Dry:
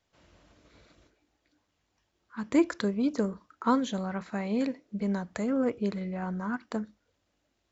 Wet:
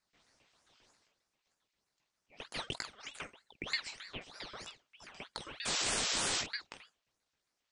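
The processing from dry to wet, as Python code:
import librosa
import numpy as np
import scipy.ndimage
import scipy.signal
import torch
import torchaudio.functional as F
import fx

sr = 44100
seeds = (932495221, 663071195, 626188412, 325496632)

p1 = fx.peak_eq(x, sr, hz=160.0, db=12.5, octaves=2.8)
p2 = fx.filter_lfo_highpass(p1, sr, shape='saw_up', hz=7.5, low_hz=960.0, high_hz=4300.0, q=1.8)
p3 = fx.spec_paint(p2, sr, seeds[0], shape='noise', start_s=5.65, length_s=0.77, low_hz=1300.0, high_hz=6900.0, level_db=-28.0)
p4 = p3 + fx.room_early_taps(p3, sr, ms=(18, 47), db=(-5.0, -10.0), dry=0)
p5 = fx.ring_lfo(p4, sr, carrier_hz=2000.0, swing_pct=60, hz=3.2)
y = p5 * 10.0 ** (-4.5 / 20.0)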